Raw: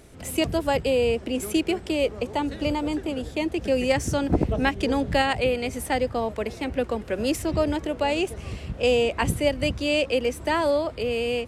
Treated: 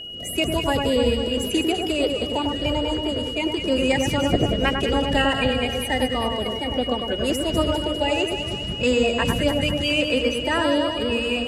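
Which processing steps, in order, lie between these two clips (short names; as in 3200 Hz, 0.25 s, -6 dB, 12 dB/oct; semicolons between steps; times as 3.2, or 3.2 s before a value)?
bin magnitudes rounded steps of 30 dB; whine 2900 Hz -34 dBFS; echo with dull and thin repeats by turns 0.1 s, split 1800 Hz, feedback 73%, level -4 dB; gain +1 dB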